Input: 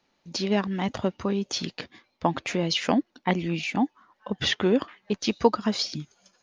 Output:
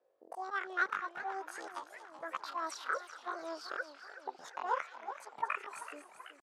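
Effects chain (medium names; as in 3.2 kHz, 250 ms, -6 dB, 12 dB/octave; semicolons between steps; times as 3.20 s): slow attack 144 ms; pitch shift +11.5 st; auto-wah 540–1400 Hz, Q 4.9, up, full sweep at -29 dBFS; feedback echo behind a high-pass 230 ms, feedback 34%, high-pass 1.7 kHz, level -12 dB; modulated delay 380 ms, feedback 62%, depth 176 cents, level -13 dB; trim +6.5 dB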